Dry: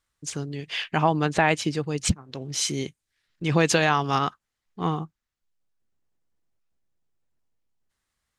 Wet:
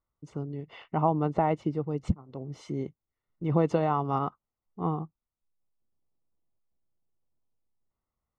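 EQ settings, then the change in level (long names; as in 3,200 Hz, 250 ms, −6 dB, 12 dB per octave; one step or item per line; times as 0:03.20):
Savitzky-Golay smoothing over 65 samples
−3.0 dB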